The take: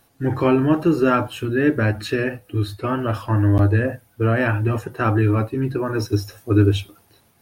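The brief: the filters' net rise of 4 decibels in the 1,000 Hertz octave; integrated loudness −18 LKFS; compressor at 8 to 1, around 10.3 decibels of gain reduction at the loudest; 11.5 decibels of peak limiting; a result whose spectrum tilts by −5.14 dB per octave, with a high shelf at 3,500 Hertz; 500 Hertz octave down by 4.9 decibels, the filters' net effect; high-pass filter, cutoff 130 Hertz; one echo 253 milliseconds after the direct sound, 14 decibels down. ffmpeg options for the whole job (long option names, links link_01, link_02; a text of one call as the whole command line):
ffmpeg -i in.wav -af "highpass=130,equalizer=frequency=500:width_type=o:gain=-8.5,equalizer=frequency=1000:width_type=o:gain=6.5,highshelf=frequency=3500:gain=8,acompressor=threshold=-22dB:ratio=8,alimiter=limit=-23dB:level=0:latency=1,aecho=1:1:253:0.2,volume=14dB" out.wav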